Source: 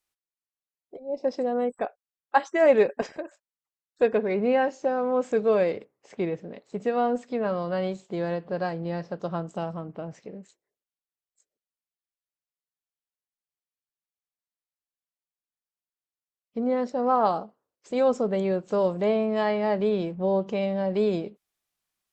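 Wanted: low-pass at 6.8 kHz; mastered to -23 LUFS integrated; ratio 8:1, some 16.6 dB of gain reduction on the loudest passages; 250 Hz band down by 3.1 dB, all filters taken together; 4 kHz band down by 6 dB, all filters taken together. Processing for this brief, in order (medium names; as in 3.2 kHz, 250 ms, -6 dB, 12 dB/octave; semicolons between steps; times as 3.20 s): low-pass 6.8 kHz; peaking EQ 250 Hz -4 dB; peaking EQ 4 kHz -8 dB; compression 8:1, threshold -33 dBFS; trim +15 dB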